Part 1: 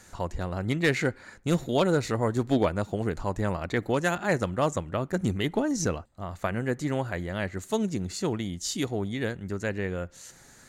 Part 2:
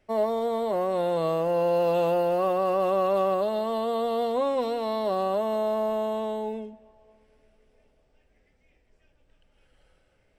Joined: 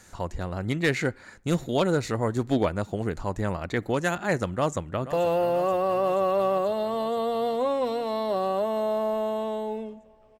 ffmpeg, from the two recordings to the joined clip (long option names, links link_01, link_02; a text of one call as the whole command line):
ffmpeg -i cue0.wav -i cue1.wav -filter_complex "[0:a]apad=whole_dur=10.39,atrim=end=10.39,atrim=end=5.132[link_01];[1:a]atrim=start=1.888:end=7.15[link_02];[link_01][link_02]acrossfade=duration=0.004:curve1=hsin:curve2=hsin,asplit=2[link_03][link_04];[link_04]afade=type=in:start_time=4.53:duration=0.01,afade=type=out:start_time=5.13:duration=0.01,aecho=0:1:480|960|1440|1920|2400|2880|3360|3840|4320|4800|5280:0.211349|0.158512|0.118884|0.0891628|0.0668721|0.0501541|0.0376156|0.0282117|0.0211588|0.0158691|0.0119018[link_05];[link_03][link_05]amix=inputs=2:normalize=0" out.wav